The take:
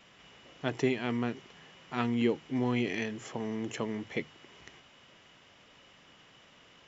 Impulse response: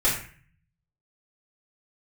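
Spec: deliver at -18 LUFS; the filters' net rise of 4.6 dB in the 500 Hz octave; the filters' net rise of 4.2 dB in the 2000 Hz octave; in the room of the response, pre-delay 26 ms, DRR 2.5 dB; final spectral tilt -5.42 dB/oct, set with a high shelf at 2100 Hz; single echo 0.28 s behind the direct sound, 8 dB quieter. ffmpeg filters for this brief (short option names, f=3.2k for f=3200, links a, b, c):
-filter_complex "[0:a]equalizer=f=500:t=o:g=6,equalizer=f=2k:t=o:g=8,highshelf=f=2.1k:g=-6,aecho=1:1:280:0.398,asplit=2[a][b];[1:a]atrim=start_sample=2205,adelay=26[c];[b][c]afir=irnorm=-1:irlink=0,volume=-16dB[d];[a][d]amix=inputs=2:normalize=0,volume=10.5dB"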